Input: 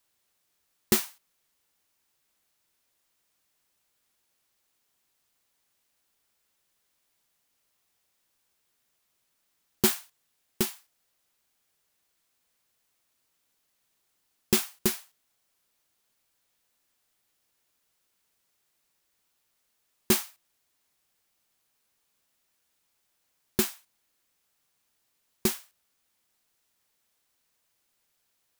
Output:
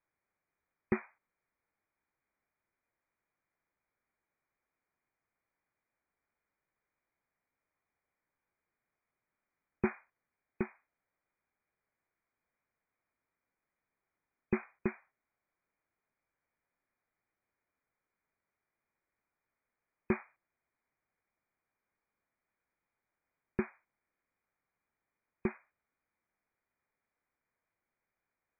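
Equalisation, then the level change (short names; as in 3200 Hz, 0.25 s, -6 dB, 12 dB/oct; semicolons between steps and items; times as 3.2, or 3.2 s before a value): brick-wall FIR low-pass 2500 Hz; -5.5 dB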